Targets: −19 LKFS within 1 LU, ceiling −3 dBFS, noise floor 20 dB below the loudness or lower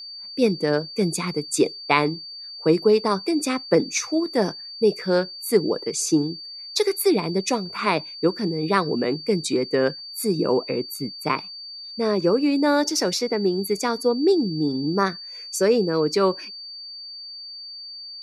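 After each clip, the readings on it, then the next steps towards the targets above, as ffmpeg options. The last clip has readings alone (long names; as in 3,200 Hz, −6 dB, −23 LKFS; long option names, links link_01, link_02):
interfering tone 4,600 Hz; level of the tone −35 dBFS; integrated loudness −22.5 LKFS; sample peak −2.5 dBFS; target loudness −19.0 LKFS
→ -af "bandreject=frequency=4600:width=30"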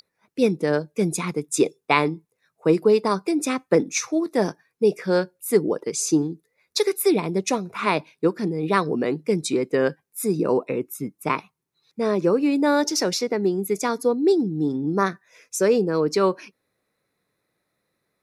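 interfering tone none found; integrated loudness −23.0 LKFS; sample peak −2.5 dBFS; target loudness −19.0 LKFS
→ -af "volume=4dB,alimiter=limit=-3dB:level=0:latency=1"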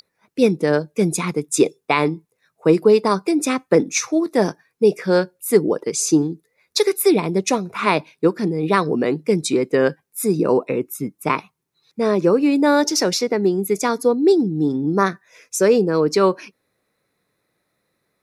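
integrated loudness −19.0 LKFS; sample peak −3.0 dBFS; background noise floor −73 dBFS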